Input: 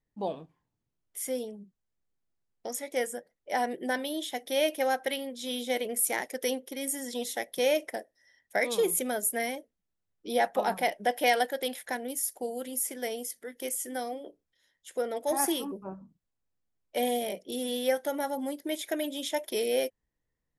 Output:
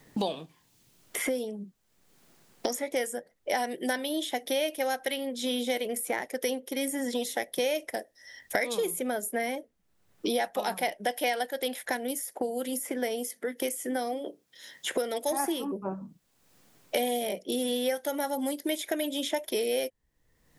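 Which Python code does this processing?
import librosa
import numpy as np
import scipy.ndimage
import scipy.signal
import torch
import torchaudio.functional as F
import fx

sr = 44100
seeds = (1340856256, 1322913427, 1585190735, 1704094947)

y = fx.cheby1_highpass(x, sr, hz=170.0, order=2, at=(12.23, 15.35))
y = fx.band_squash(y, sr, depth_pct=100)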